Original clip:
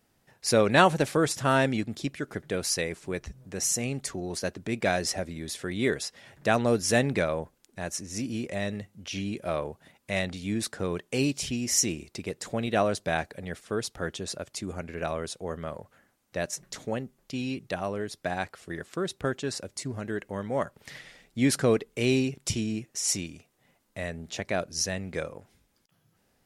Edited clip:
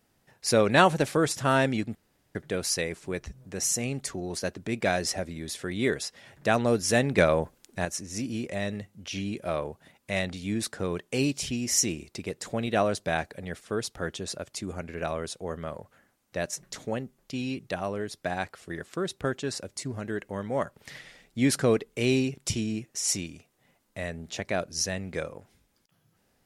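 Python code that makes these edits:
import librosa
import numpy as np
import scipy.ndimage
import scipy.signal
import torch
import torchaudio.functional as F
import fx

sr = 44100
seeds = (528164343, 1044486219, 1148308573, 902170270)

y = fx.edit(x, sr, fx.room_tone_fill(start_s=1.95, length_s=0.4),
    fx.clip_gain(start_s=7.18, length_s=0.67, db=6.0), tone=tone)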